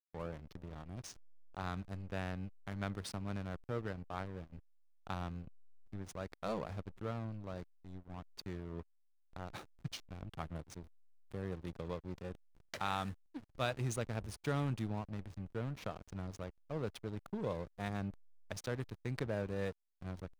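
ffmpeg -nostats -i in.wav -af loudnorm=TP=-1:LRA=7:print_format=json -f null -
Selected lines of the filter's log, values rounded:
"input_i" : "-42.9",
"input_tp" : "-20.6",
"input_lra" : "6.4",
"input_thresh" : "-53.1",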